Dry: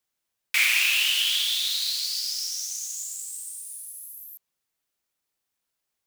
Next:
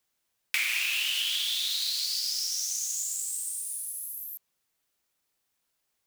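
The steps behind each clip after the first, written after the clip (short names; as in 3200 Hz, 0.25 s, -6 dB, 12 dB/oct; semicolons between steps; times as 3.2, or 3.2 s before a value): compressor 4:1, threshold -31 dBFS, peak gain reduction 12 dB; gain +3.5 dB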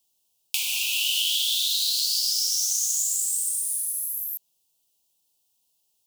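Chebyshev band-stop 940–2800 Hz, order 3; high shelf 2700 Hz +8.5 dB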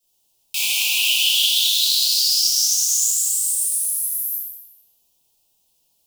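reverb RT60 2.3 s, pre-delay 3 ms, DRR -13.5 dB; gain -7 dB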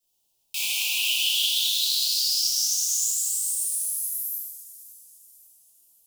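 thin delay 0.543 s, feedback 45%, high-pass 5400 Hz, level -17 dB; gain -6 dB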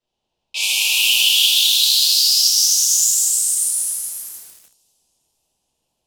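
low-pass opened by the level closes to 2200 Hz, open at -21.5 dBFS; lo-fi delay 0.3 s, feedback 35%, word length 7-bit, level -10 dB; gain +9 dB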